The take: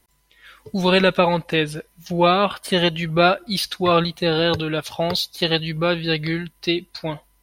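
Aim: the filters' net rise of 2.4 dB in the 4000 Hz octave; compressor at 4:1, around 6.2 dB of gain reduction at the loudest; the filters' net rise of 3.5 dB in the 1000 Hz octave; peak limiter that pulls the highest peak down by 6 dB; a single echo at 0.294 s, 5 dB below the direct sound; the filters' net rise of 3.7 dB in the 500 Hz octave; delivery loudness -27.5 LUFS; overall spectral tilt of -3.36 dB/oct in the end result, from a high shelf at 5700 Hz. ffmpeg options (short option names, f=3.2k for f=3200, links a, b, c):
-af "equalizer=f=500:t=o:g=3.5,equalizer=f=1k:t=o:g=3.5,equalizer=f=4k:t=o:g=4,highshelf=f=5.7k:g=-4,acompressor=threshold=-15dB:ratio=4,alimiter=limit=-10.5dB:level=0:latency=1,aecho=1:1:294:0.562,volume=-6dB"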